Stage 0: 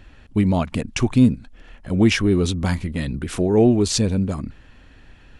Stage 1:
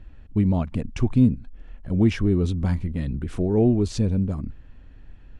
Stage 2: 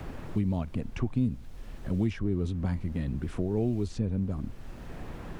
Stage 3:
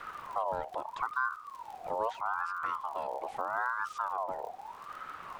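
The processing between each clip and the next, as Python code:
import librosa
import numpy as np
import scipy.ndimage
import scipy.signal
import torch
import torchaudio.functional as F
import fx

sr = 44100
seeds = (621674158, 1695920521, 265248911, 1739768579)

y1 = fx.tilt_eq(x, sr, slope=-2.5)
y1 = y1 * librosa.db_to_amplitude(-8.5)
y2 = fx.dmg_noise_colour(y1, sr, seeds[0], colour='brown', level_db=-42.0)
y2 = fx.band_squash(y2, sr, depth_pct=70)
y2 = y2 * librosa.db_to_amplitude(-8.0)
y3 = fx.dmg_crackle(y2, sr, seeds[1], per_s=75.0, level_db=-38.0)
y3 = fx.ring_lfo(y3, sr, carrier_hz=1000.0, swing_pct=30, hz=0.79)
y3 = y3 * librosa.db_to_amplitude(-2.5)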